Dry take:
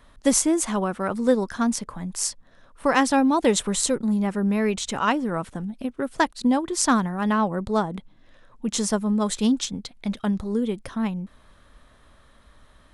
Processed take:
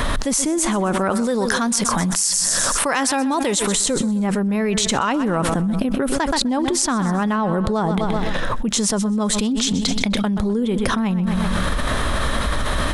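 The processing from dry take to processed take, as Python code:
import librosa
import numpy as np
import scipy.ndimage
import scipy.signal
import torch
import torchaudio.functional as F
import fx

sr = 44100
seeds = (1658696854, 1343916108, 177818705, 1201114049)

y = fx.tilt_eq(x, sr, slope=2.0, at=(1.1, 3.75))
y = fx.echo_feedback(y, sr, ms=127, feedback_pct=43, wet_db=-17.0)
y = fx.env_flatten(y, sr, amount_pct=100)
y = F.gain(torch.from_numpy(y), -4.5).numpy()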